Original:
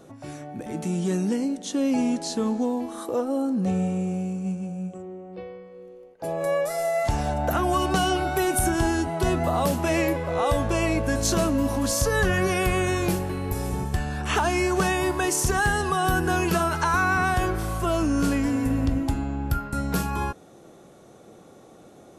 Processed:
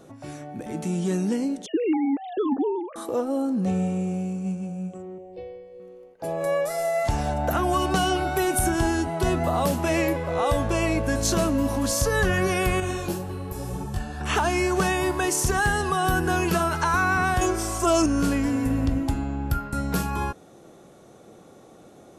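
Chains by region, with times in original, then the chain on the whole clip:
1.66–2.96 sine-wave speech + notch 580 Hz, Q 8.6
5.18–5.8 low shelf 220 Hz +5.5 dB + fixed phaser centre 530 Hz, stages 4
12.8–14.21 bell 2100 Hz -8 dB 0.33 oct + detuned doubles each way 31 cents
17.41–18.06 HPF 120 Hz 6 dB/oct + band shelf 6800 Hz +10.5 dB 1 oct + comb 3 ms, depth 78%
whole clip: dry

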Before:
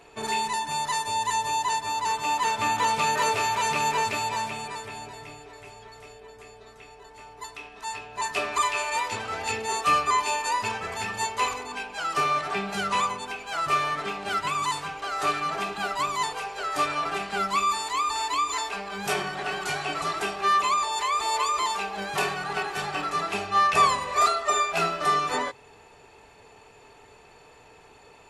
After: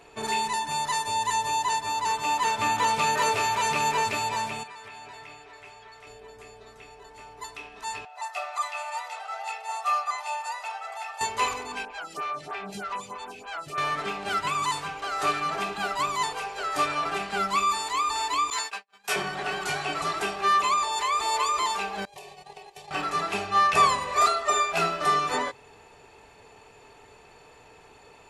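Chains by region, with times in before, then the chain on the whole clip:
4.63–6.07 LPF 1300 Hz 6 dB/oct + tilt shelf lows -9.5 dB, about 860 Hz + compressor 10:1, threshold -39 dBFS
8.05–11.21 ladder high-pass 690 Hz, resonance 55% + comb 1.5 ms, depth 74%
11.85–13.78 compressor 2:1, threshold -32 dBFS + photocell phaser 3.2 Hz
18.5–19.16 HPF 1000 Hz 6 dB/oct + gate -35 dBFS, range -51 dB + doubler 14 ms -3 dB
22.05–22.91 gate -31 dBFS, range -19 dB + compressor 16:1, threshold -36 dBFS + fixed phaser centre 580 Hz, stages 4
whole clip: dry

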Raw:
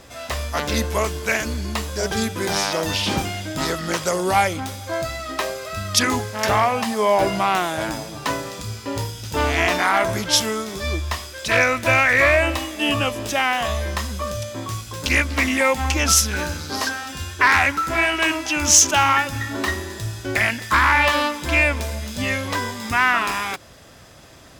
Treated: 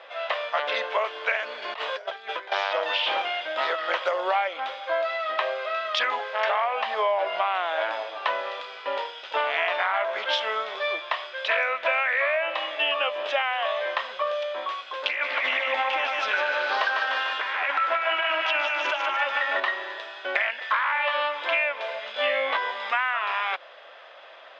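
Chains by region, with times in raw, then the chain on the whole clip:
1.62–2.52 HPF 230 Hz + negative-ratio compressor -31 dBFS, ratio -0.5
15.09–19.6 negative-ratio compressor -22 dBFS, ratio -0.5 + split-band echo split 470 Hz, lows 0.223 s, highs 0.149 s, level -4 dB
22.12–22.57 tone controls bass +1 dB, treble -5 dB + flutter echo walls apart 3.2 m, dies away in 0.58 s
whole clip: elliptic band-pass 550–3300 Hz, stop band 60 dB; compressor 6:1, threshold -25 dBFS; gain +3.5 dB

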